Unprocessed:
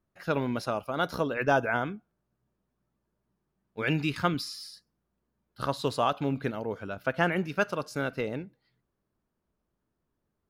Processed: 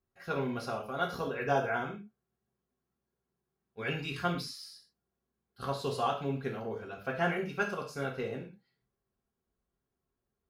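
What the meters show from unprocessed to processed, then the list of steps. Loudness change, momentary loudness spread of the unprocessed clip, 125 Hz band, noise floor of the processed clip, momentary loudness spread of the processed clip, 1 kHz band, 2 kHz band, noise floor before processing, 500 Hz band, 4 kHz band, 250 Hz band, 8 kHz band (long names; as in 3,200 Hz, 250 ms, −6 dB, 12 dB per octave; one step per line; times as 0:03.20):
−4.5 dB, 11 LU, −5.0 dB, below −85 dBFS, 11 LU, −3.5 dB, −5.0 dB, −82 dBFS, −4.0 dB, −4.5 dB, −6.5 dB, −4.5 dB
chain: notch comb filter 300 Hz
reverb whose tail is shaped and stops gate 150 ms falling, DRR −0.5 dB
level −6.5 dB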